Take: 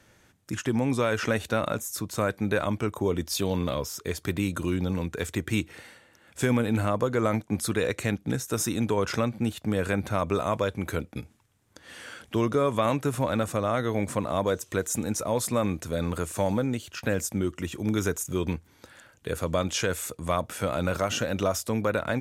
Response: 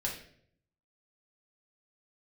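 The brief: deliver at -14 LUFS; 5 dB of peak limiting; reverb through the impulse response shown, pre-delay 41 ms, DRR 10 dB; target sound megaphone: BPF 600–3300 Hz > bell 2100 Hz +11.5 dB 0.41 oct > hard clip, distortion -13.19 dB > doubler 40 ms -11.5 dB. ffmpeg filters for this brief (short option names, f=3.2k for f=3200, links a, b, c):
-filter_complex "[0:a]alimiter=limit=-17dB:level=0:latency=1,asplit=2[a][b];[1:a]atrim=start_sample=2205,adelay=41[c];[b][c]afir=irnorm=-1:irlink=0,volume=-13dB[d];[a][d]amix=inputs=2:normalize=0,highpass=600,lowpass=3.3k,equalizer=f=2.1k:t=o:w=0.41:g=11.5,asoftclip=type=hard:threshold=-26dB,asplit=2[e][f];[f]adelay=40,volume=-11.5dB[g];[e][g]amix=inputs=2:normalize=0,volume=20.5dB"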